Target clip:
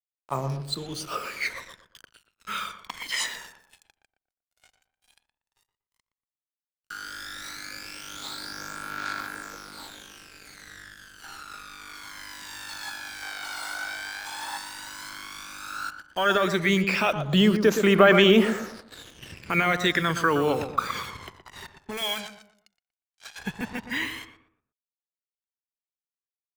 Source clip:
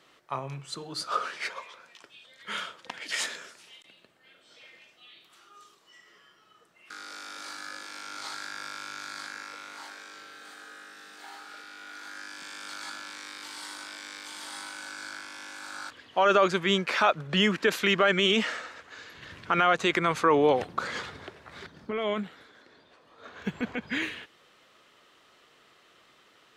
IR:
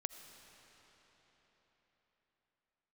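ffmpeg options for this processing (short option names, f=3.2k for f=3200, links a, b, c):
-filter_complex "[0:a]acrusher=bits=6:mix=0:aa=0.5,asettb=1/sr,asplit=3[a][b][c];[a]atrim=end=21.974[d];[b]atrim=start=21.97:end=23.39,asetpts=PTS-STARTPTS,afade=t=in:d=0.004:c=qsin,afade=t=out:st=1.416:d=0.004:c=qsin,tiltshelf=f=1.3k:g=-10[e];[c]atrim=start=23.386[f];[d][e]acrossfade=d=0.004:c1=hsin:c2=qsin[g];[g][f]acrossfade=d=0.004:c1=qsin:c2=hsin,asplit=2[h][i];[i]adelay=119,lowpass=f=1.5k:p=1,volume=-8dB,asplit=2[j][k];[k]adelay=119,lowpass=f=1.5k:p=1,volume=0.36,asplit=2[l][m];[m]adelay=119,lowpass=f=1.5k:p=1,volume=0.36,asplit=2[n][o];[o]adelay=119,lowpass=f=1.5k:p=1,volume=0.36[p];[h][j][l][n][p]amix=inputs=5:normalize=0,aphaser=in_gain=1:out_gain=1:delay=1.4:decay=0.64:speed=0.11:type=triangular,asettb=1/sr,asplit=3[q][r][s];[q]atrim=end=13.224[t];[r]atrim=start=13.22:end=14.58,asetpts=PTS-STARTPTS,afade=t=in:d=0.004:c=qsin,afade=t=out:st=1.356:d=0.004:c=qsin,equalizer=f=870:w=0.63:g=7.5[u];[s]atrim=start=14.576[v];[t][u]acrossfade=d=0.004:c1=hsin:c2=qsin[w];[w][v]acrossfade=d=0.004:c1=qsin:c2=hsin"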